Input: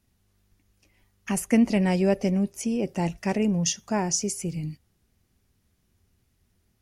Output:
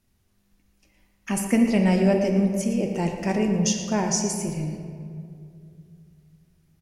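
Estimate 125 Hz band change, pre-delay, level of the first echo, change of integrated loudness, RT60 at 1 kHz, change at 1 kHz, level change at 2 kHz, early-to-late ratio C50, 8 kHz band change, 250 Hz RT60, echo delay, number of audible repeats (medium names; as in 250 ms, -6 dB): +2.5 dB, 3 ms, -12.5 dB, +2.5 dB, 2.0 s, +2.0 dB, +2.0 dB, 4.0 dB, +1.0 dB, 2.9 s, 114 ms, 1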